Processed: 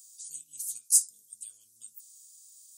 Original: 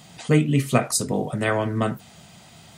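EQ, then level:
inverse Chebyshev high-pass filter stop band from 2,100 Hz, stop band 60 dB
+4.0 dB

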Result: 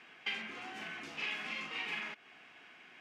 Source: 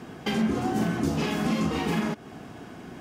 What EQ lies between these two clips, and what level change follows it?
resonant band-pass 2,400 Hz, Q 2.8
+1.0 dB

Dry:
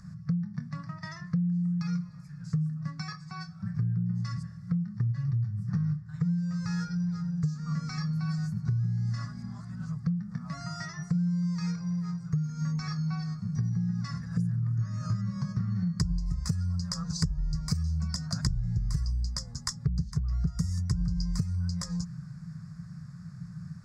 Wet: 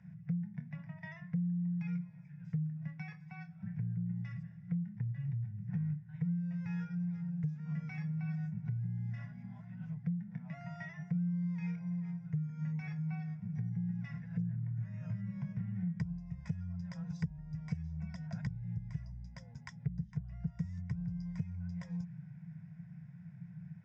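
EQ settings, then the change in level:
loudspeaker in its box 200–3,400 Hz, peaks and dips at 260 Hz −6 dB, 370 Hz −5 dB, 570 Hz −9 dB, 820 Hz −5 dB, 1,200 Hz −10 dB, 1,700 Hz −10 dB
phaser with its sweep stopped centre 1,200 Hz, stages 6
+2.5 dB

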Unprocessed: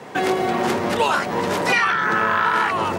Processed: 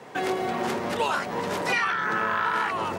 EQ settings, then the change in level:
mains-hum notches 50/100/150/200/250/300/350 Hz
−6.5 dB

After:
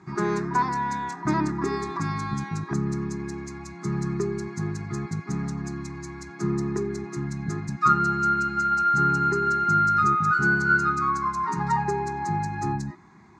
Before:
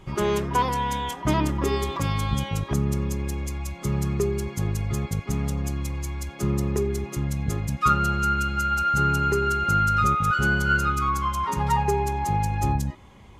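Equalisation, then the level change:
loudspeaker in its box 170–6,900 Hz, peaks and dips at 170 Hz +8 dB, 350 Hz +9 dB, 1,700 Hz +5 dB, 4,100 Hz +6 dB
parametric band 610 Hz +4 dB 0.68 octaves
phaser with its sweep stopped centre 1,300 Hz, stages 4
0.0 dB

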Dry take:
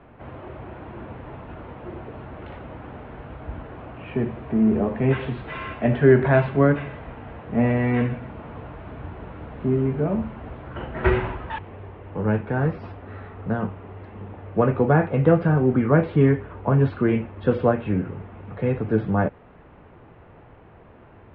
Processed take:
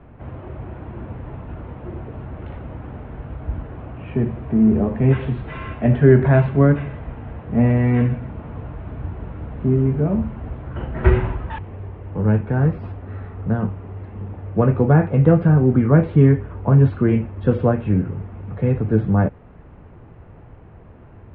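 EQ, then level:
high-frequency loss of the air 100 metres
low-shelf EQ 210 Hz +11 dB
−1.0 dB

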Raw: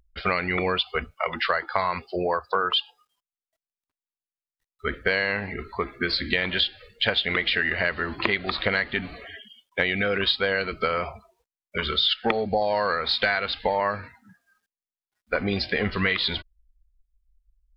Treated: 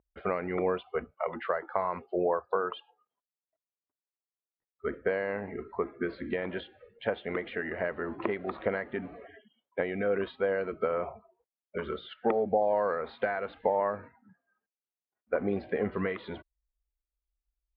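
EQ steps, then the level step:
resonant band-pass 470 Hz, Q 0.77
high-frequency loss of the air 470 metres
0.0 dB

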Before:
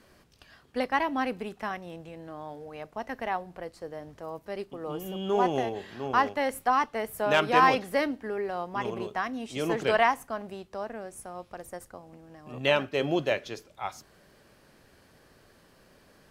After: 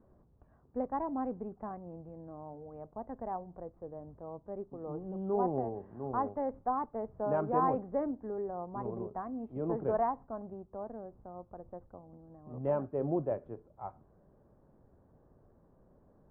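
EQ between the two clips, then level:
low-pass filter 1,000 Hz 24 dB per octave
low-shelf EQ 190 Hz +7.5 dB
−6.5 dB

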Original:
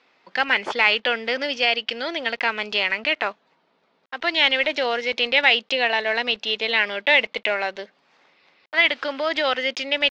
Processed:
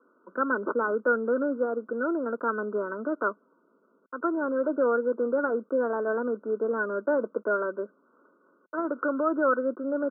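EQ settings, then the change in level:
Butterworth high-pass 170 Hz
Chebyshev low-pass filter 1,500 Hz, order 10
phaser with its sweep stopped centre 320 Hz, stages 4
+6.5 dB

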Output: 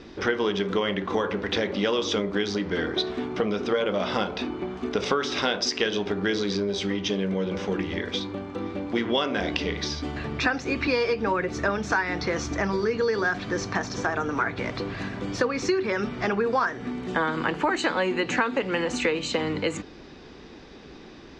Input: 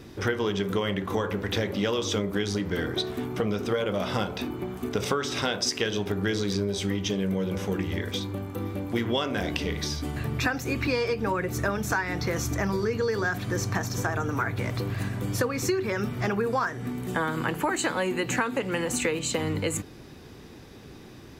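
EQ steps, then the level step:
low-pass filter 5,500 Hz 24 dB per octave
parametric band 110 Hz −13.5 dB 0.84 octaves
+3.0 dB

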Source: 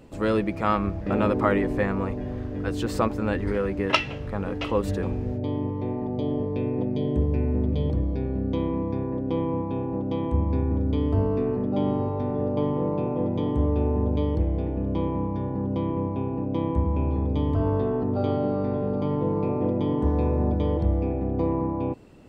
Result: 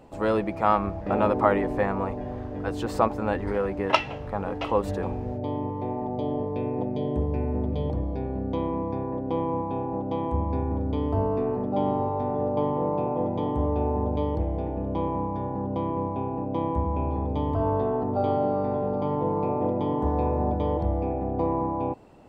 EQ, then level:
parametric band 800 Hz +11 dB 1.1 octaves
−4.0 dB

